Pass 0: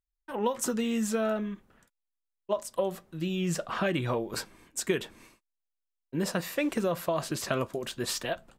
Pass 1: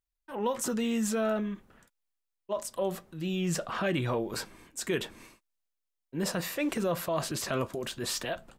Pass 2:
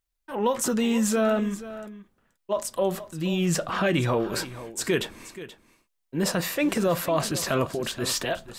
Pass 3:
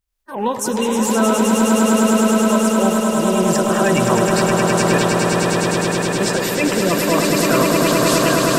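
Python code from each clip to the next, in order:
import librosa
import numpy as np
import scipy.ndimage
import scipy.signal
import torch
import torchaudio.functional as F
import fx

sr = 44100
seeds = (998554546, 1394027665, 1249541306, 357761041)

y1 = fx.transient(x, sr, attack_db=-5, sustain_db=3)
y2 = y1 + 10.0 ** (-15.0 / 20.0) * np.pad(y1, (int(479 * sr / 1000.0), 0))[:len(y1)]
y2 = y2 * 10.0 ** (6.0 / 20.0)
y3 = fx.spec_quant(y2, sr, step_db=30)
y3 = fx.echo_swell(y3, sr, ms=104, loudest=8, wet_db=-5)
y3 = y3 * 10.0 ** (4.5 / 20.0)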